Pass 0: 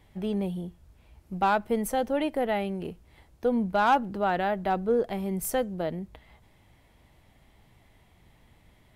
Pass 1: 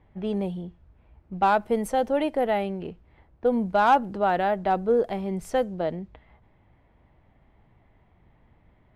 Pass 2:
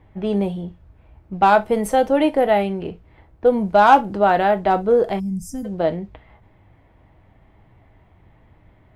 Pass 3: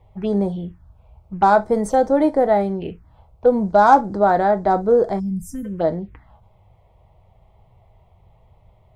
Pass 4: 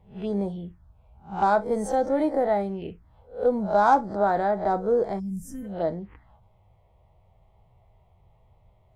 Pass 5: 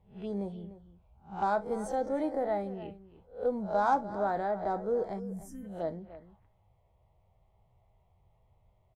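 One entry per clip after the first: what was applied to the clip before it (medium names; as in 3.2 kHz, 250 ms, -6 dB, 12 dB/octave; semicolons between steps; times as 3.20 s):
level-controlled noise filter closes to 1.6 kHz, open at -22.5 dBFS; dynamic bell 650 Hz, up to +4 dB, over -35 dBFS, Q 0.73
gated-style reverb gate 90 ms falling, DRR 9 dB; time-frequency box 5.20–5.65 s, 280–4700 Hz -26 dB; trim +6.5 dB
touch-sensitive phaser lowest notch 260 Hz, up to 2.8 kHz, full sweep at -18 dBFS; trim +1 dB
reverse spectral sustain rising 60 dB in 0.32 s; trim -7.5 dB
echo from a far wall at 51 m, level -15 dB; trim -8 dB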